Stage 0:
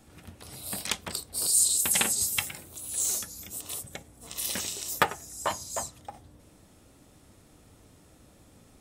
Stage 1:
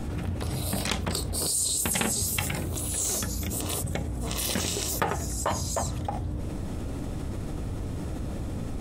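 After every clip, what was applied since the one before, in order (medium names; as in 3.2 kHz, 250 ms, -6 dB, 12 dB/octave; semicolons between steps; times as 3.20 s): tilt EQ -2.5 dB/octave; level flattener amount 70%; trim -4.5 dB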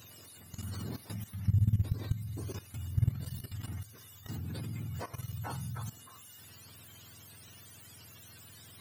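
spectrum inverted on a logarithmic axis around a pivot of 930 Hz; level held to a coarse grid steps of 15 dB; whistle 12 kHz -54 dBFS; trim -8.5 dB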